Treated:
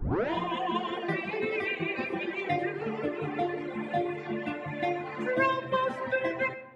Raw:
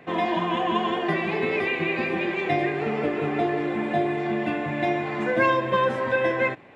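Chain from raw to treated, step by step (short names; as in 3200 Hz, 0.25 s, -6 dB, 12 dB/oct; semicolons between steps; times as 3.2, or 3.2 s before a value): tape start at the beginning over 0.33 s; pre-echo 0.127 s -23 dB; reverb removal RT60 1.6 s; digital reverb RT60 1.1 s, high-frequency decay 0.35×, pre-delay 40 ms, DRR 13 dB; gain -4 dB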